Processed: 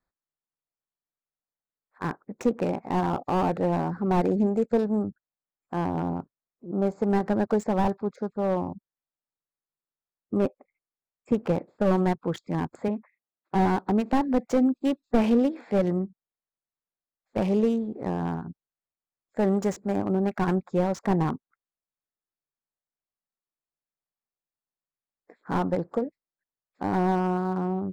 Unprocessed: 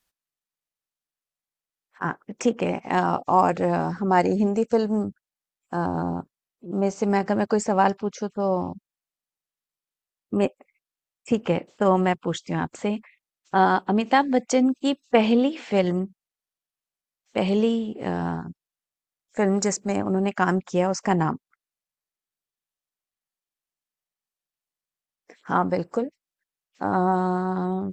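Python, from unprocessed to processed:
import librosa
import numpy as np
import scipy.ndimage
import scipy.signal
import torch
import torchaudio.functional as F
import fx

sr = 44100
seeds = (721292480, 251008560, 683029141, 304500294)

y = fx.wiener(x, sr, points=15)
y = fx.bandpass_edges(y, sr, low_hz=150.0, high_hz=2100.0, at=(12.88, 13.55))
y = fx.slew_limit(y, sr, full_power_hz=75.0)
y = y * librosa.db_to_amplitude(-1.5)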